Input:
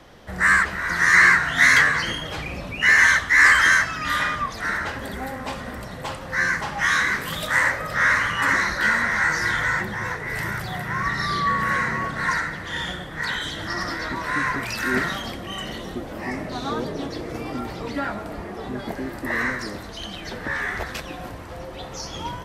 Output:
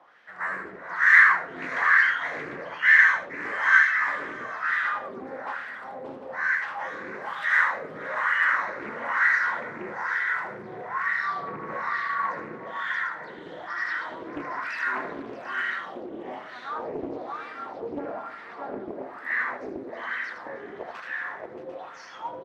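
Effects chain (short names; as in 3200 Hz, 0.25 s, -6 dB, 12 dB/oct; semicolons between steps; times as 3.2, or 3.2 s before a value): HPF 110 Hz 12 dB/oct; tapped delay 78/627/746 ms -6.5/-4/-6 dB; wah 1.1 Hz 360–1800 Hz, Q 2.7; Doppler distortion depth 0.49 ms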